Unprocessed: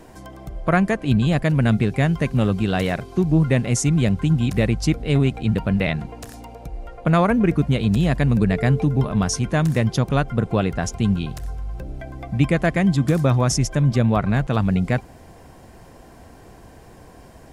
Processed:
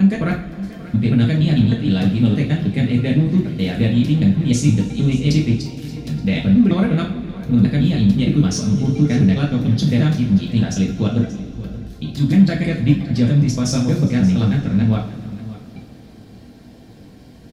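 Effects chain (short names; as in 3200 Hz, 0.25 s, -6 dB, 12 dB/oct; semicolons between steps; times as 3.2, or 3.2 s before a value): slices in reverse order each 0.156 s, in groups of 6; ten-band EQ 125 Hz +5 dB, 250 Hz +10 dB, 1000 Hz -7 dB, 4000 Hz +11 dB, 8000 Hz -5 dB; in parallel at -10 dB: soft clip -18.5 dBFS, distortion -6 dB; on the sum: two-slope reverb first 0.42 s, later 3.3 s, from -19 dB, DRR -2.5 dB; harmonic-percussive split harmonic -3 dB; on a send: echo 0.58 s -16.5 dB; on the sum: gain -7.5 dB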